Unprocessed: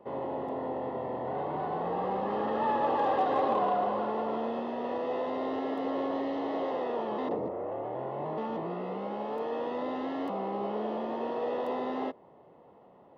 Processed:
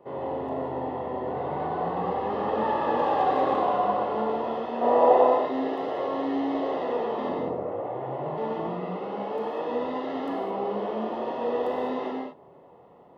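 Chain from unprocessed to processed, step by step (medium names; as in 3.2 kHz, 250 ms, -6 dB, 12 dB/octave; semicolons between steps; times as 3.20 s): 4.81–5.27 s: peaking EQ 730 Hz +14 dB 1.7 oct; gated-style reverb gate 240 ms flat, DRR -1.5 dB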